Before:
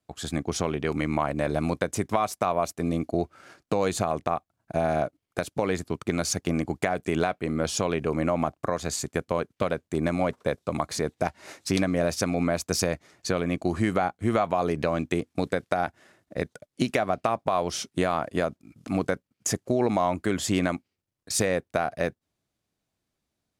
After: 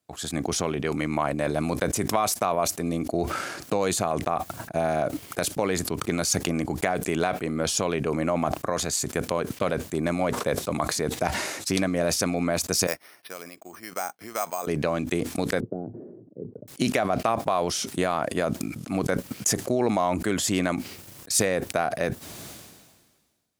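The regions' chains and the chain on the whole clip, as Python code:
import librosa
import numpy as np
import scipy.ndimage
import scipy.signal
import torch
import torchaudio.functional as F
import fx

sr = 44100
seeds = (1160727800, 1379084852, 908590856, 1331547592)

y = fx.chain(x, sr, fx.highpass(hz=940.0, slope=6),
    fx.resample_bad(factor=6, down='filtered', up='hold'),
    fx.upward_expand(threshold_db=-47.0, expansion=2.5), at=(12.87, 14.67))
y = fx.chain(y, sr, fx.cheby1_bandpass(low_hz=110.0, high_hz=420.0, order=3),
    fx.low_shelf(hz=350.0, db=-9.0), at=(15.6, 16.68))
y = fx.highpass(y, sr, hz=110.0, slope=6)
y = fx.high_shelf(y, sr, hz=6800.0, db=7.5)
y = fx.sustainer(y, sr, db_per_s=38.0)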